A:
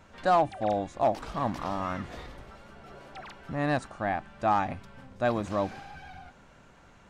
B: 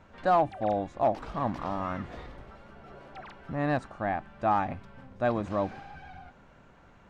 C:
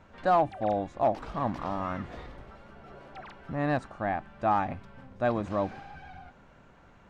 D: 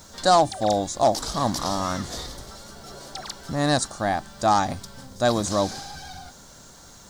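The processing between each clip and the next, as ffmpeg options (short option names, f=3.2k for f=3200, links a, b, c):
-af "lowpass=f=2.3k:p=1"
-af anull
-af "aexciter=amount=9.2:drive=9.4:freq=4k,volume=6dB"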